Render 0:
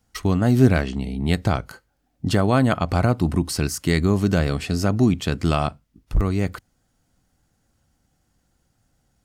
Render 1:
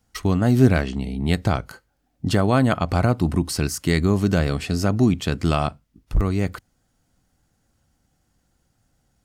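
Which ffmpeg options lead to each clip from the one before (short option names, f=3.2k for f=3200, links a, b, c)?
-af anull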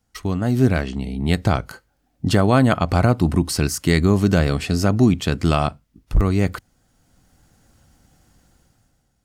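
-af "dynaudnorm=f=110:g=13:m=14dB,volume=-3dB"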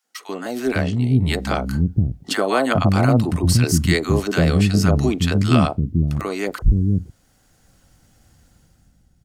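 -filter_complex "[0:a]acrossover=split=290|900[a][b][c];[b]adelay=40[d];[a]adelay=510[e];[e][d][c]amix=inputs=3:normalize=0,volume=2dB"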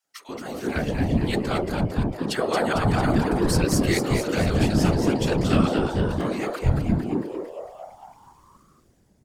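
-filter_complex "[0:a]asplit=9[a][b][c][d][e][f][g][h][i];[b]adelay=226,afreqshift=130,volume=-5dB[j];[c]adelay=452,afreqshift=260,volume=-9.9dB[k];[d]adelay=678,afreqshift=390,volume=-14.8dB[l];[e]adelay=904,afreqshift=520,volume=-19.6dB[m];[f]adelay=1130,afreqshift=650,volume=-24.5dB[n];[g]adelay=1356,afreqshift=780,volume=-29.4dB[o];[h]adelay=1582,afreqshift=910,volume=-34.3dB[p];[i]adelay=1808,afreqshift=1040,volume=-39.2dB[q];[a][j][k][l][m][n][o][p][q]amix=inputs=9:normalize=0,afftfilt=real='hypot(re,im)*cos(2*PI*random(0))':imag='hypot(re,im)*sin(2*PI*random(1))':win_size=512:overlap=0.75"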